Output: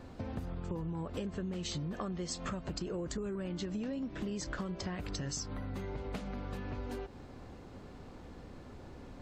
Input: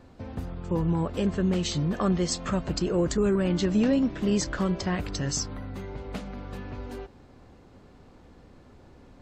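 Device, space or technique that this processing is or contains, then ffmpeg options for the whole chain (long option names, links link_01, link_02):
serial compression, leveller first: -af "acompressor=threshold=-27dB:ratio=2.5,acompressor=threshold=-39dB:ratio=5,volume=2.5dB"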